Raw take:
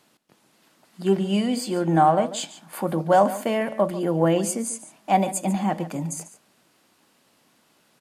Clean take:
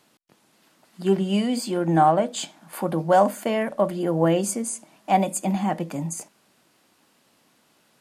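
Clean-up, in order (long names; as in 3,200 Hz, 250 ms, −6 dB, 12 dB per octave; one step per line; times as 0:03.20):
echo removal 143 ms −15 dB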